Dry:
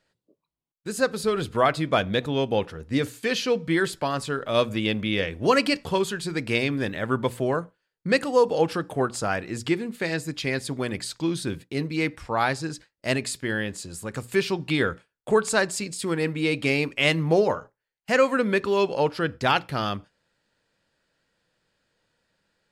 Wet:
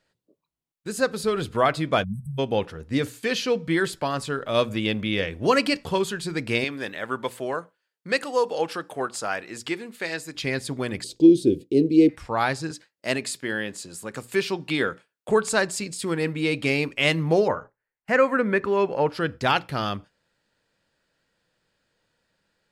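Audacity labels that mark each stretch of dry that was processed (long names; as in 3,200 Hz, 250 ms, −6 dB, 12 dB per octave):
2.040000	2.390000	time-frequency box erased 230–7,800 Hz
6.640000	10.350000	high-pass filter 570 Hz 6 dB per octave
11.040000	12.090000	drawn EQ curve 170 Hz 0 dB, 350 Hz +14 dB, 490 Hz +8 dB, 1,300 Hz −28 dB, 2,900 Hz −4 dB
12.710000	15.290000	Bessel high-pass filter 200 Hz
17.480000	19.090000	high shelf with overshoot 2,600 Hz −8.5 dB, Q 1.5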